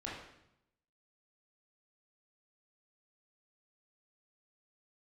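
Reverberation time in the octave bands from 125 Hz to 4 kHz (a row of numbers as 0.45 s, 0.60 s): 1.1 s, 0.95 s, 0.80 s, 0.80 s, 0.75 s, 0.70 s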